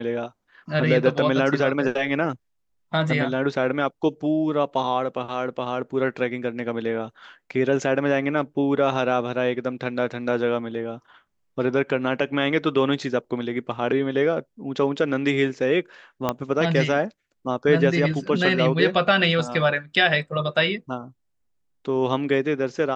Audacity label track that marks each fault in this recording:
16.290000	16.290000	click −9 dBFS

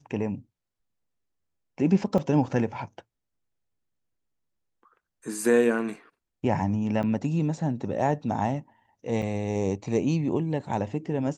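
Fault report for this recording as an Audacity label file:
2.180000	2.180000	drop-out 3.6 ms
7.030000	7.040000	drop-out 5.6 ms
9.220000	9.220000	drop-out 4.7 ms

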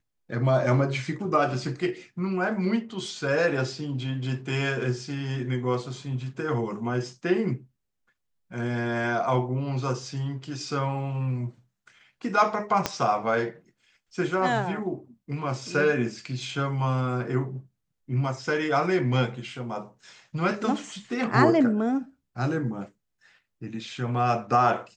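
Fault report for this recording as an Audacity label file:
12.860000	12.860000	click −8 dBFS

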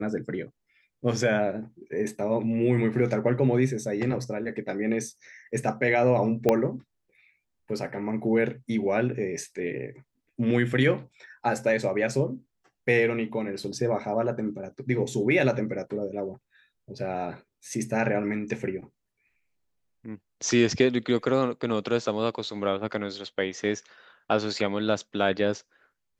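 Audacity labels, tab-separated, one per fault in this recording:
6.490000	6.490000	click −9 dBFS

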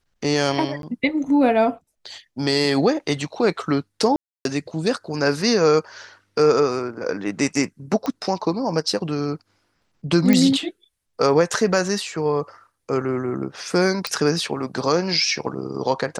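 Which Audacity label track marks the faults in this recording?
0.820000	0.830000	drop-out 12 ms
4.160000	4.450000	drop-out 292 ms
8.060000	8.060000	click −13 dBFS
10.330000	10.330000	click −5 dBFS
14.070000	14.070000	click −10 dBFS

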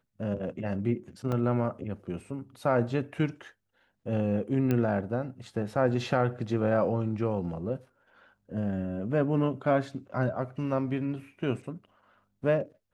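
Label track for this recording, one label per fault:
1.320000	1.320000	drop-out 2.8 ms
4.710000	4.710000	click −16 dBFS

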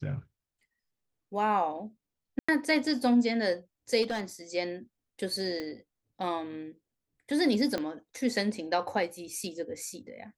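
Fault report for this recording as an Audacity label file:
2.390000	2.480000	drop-out 95 ms
4.020000	4.210000	clipping −27 dBFS
5.600000	5.600000	click −23 dBFS
7.780000	7.780000	click −18 dBFS

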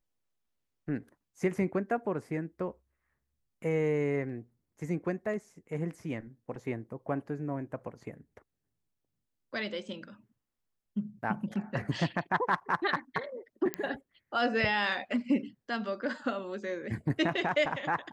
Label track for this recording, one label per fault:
13.740000	13.740000	click −16 dBFS

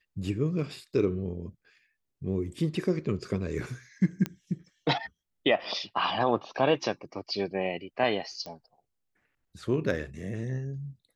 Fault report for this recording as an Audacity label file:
4.260000	4.260000	click −16 dBFS
8.460000	8.460000	click −25 dBFS

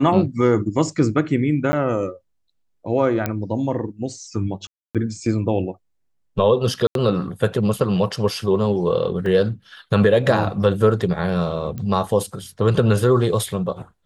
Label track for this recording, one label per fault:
1.720000	1.730000	drop-out 10 ms
3.260000	3.260000	click −8 dBFS
4.670000	4.950000	drop-out 277 ms
6.870000	6.950000	drop-out 82 ms
9.260000	9.260000	drop-out 2.8 ms
11.780000	11.780000	click −18 dBFS

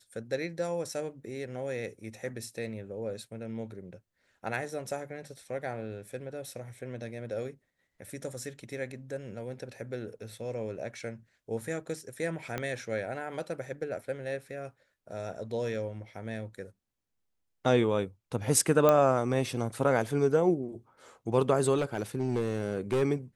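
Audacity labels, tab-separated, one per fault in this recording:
12.580000	12.580000	click −18 dBFS
18.890000	18.890000	click −11 dBFS
21.770000	23.030000	clipping −23.5 dBFS

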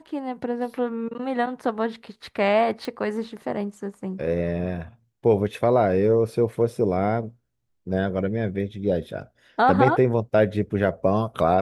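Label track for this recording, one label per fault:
2.850000	2.850000	click −19 dBFS

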